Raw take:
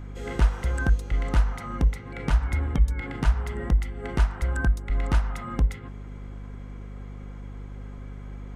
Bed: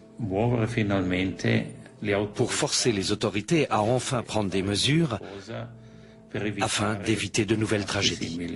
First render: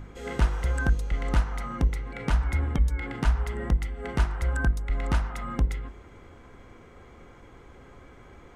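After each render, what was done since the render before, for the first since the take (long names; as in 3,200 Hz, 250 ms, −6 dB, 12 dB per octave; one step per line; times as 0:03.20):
hum removal 50 Hz, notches 10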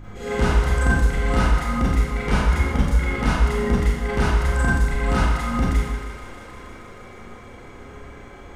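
feedback echo with a high-pass in the loop 157 ms, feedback 84%, high-pass 270 Hz, level −13.5 dB
four-comb reverb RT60 0.87 s, combs from 30 ms, DRR −8.5 dB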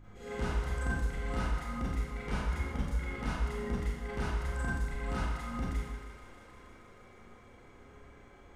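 level −14.5 dB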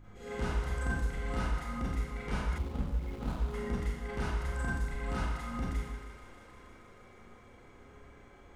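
0:02.58–0:03.54: running median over 25 samples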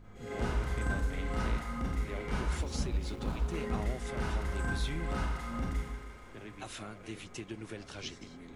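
mix in bed −18.5 dB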